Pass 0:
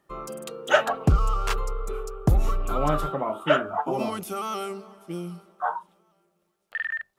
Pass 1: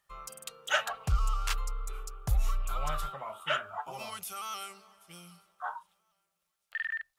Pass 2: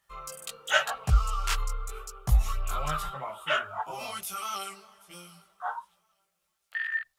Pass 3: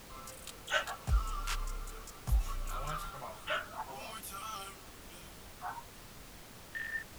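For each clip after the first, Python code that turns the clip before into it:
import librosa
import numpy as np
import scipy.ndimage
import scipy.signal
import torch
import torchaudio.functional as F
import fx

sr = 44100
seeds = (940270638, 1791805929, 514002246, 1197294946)

y1 = fx.tone_stack(x, sr, knobs='10-0-10')
y2 = fx.chorus_voices(y1, sr, voices=2, hz=0.92, base_ms=18, depth_ms=3.0, mix_pct=50)
y2 = F.gain(torch.from_numpy(y2), 7.0).numpy()
y3 = fx.dmg_noise_colour(y2, sr, seeds[0], colour='pink', level_db=-43.0)
y3 = F.gain(torch.from_numpy(y3), -8.5).numpy()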